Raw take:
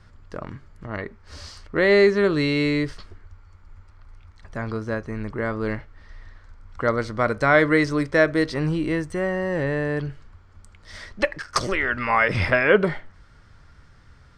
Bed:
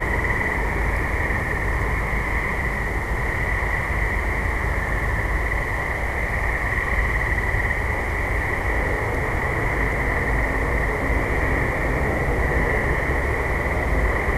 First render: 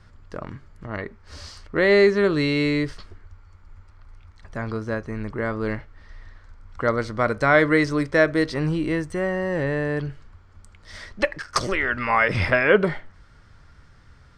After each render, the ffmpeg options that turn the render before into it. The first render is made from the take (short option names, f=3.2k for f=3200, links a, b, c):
-af anull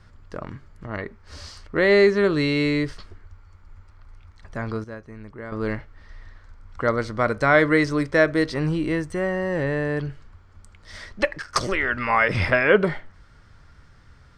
-filter_complex "[0:a]asplit=3[a][b][c];[a]atrim=end=4.842[d];[b]atrim=start=4.838:end=5.522,asetpts=PTS-STARTPTS,volume=-10dB[e];[c]atrim=start=5.518[f];[d][e]acrossfade=d=0.004:c1=hsin:c2=hsin[g];[g][f]acrossfade=d=0.004:c1=hsin:c2=hsin"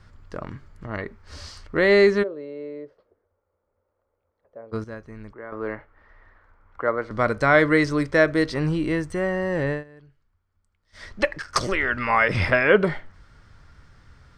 -filter_complex "[0:a]asplit=3[a][b][c];[a]afade=t=out:st=2.22:d=0.02[d];[b]bandpass=f=520:t=q:w=5.9,afade=t=in:st=2.22:d=0.02,afade=t=out:st=4.72:d=0.02[e];[c]afade=t=in:st=4.72:d=0.02[f];[d][e][f]amix=inputs=3:normalize=0,asettb=1/sr,asplit=3[g][h][i];[g]atrim=end=5.334[j];[h]atrim=start=5.33:end=7.11,asetpts=PTS-STARTPTS,afade=t=in:d=0.004:c=qsin,afade=t=out:st=1.776:d=0.004:c=qsin,acrossover=split=320 2200:gain=0.224 1 0.0891[k][l][m];[k][l][m]amix=inputs=3:normalize=0[n];[i]atrim=start=7.106[o];[j][n]acrossfade=d=0.004:c1=hsin:c2=qsin[p];[p][o]acrossfade=d=0.004:c1=qsin:c2=hsin,asplit=3[q][r][s];[q]atrim=end=9.84,asetpts=PTS-STARTPTS,afade=t=out:st=9.71:d=0.13:silence=0.0707946[t];[r]atrim=start=9.84:end=10.92,asetpts=PTS-STARTPTS,volume=-23dB[u];[s]atrim=start=10.92,asetpts=PTS-STARTPTS,afade=t=in:d=0.13:silence=0.0707946[v];[t][u][v]concat=n=3:v=0:a=1"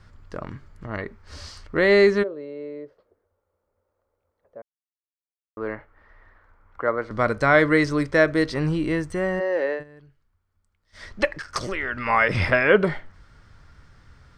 -filter_complex "[0:a]asplit=3[a][b][c];[a]afade=t=out:st=9.39:d=0.02[d];[b]highpass=f=350:w=0.5412,highpass=f=350:w=1.3066,equalizer=f=530:t=q:w=4:g=5,equalizer=f=1.1k:t=q:w=4:g=-3,equalizer=f=3.4k:t=q:w=4:g=-4,lowpass=f=5.6k:w=0.5412,lowpass=f=5.6k:w=1.3066,afade=t=in:st=9.39:d=0.02,afade=t=out:st=9.79:d=0.02[e];[c]afade=t=in:st=9.79:d=0.02[f];[d][e][f]amix=inputs=3:normalize=0,asettb=1/sr,asplit=3[g][h][i];[g]atrim=end=11.314[j];[h]atrim=start=11.31:end=12.06,asetpts=PTS-STARTPTS,afade=t=in:d=0.004:c=qsin,afade=t=out:st=0.746:d=0.004:c=qsin,acompressor=threshold=-31dB:ratio=1.5:attack=3.2:release=140:knee=1:detection=peak[k];[i]atrim=start=12.056[l];[j][k]acrossfade=d=0.004:c1=hsin:c2=qsin[m];[m][l]acrossfade=d=0.004:c1=qsin:c2=hsin,asplit=3[n][o][p];[n]atrim=end=4.62,asetpts=PTS-STARTPTS,afade=t=out:st=4.616:d=0.004:c=hsin[q];[o]atrim=start=4.62:end=5.57,asetpts=PTS-STARTPTS,volume=0[r];[p]atrim=start=5.57,asetpts=PTS-STARTPTS,afade=t=in:d=0.004:c=hsin[s];[q][r][s]concat=n=3:v=0:a=1"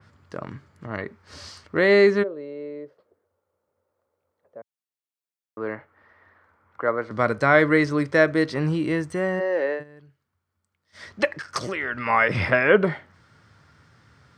-af "highpass=f=96:w=0.5412,highpass=f=96:w=1.3066,adynamicequalizer=threshold=0.0178:dfrequency=3400:dqfactor=0.7:tfrequency=3400:tqfactor=0.7:attack=5:release=100:ratio=0.375:range=3:mode=cutabove:tftype=highshelf"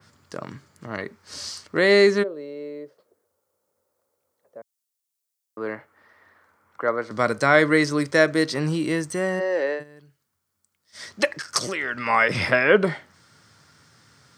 -af "highpass=120,bass=f=250:g=0,treble=f=4k:g=13"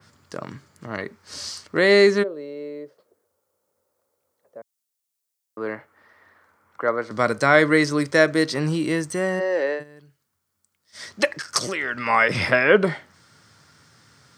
-af "volume=1dB"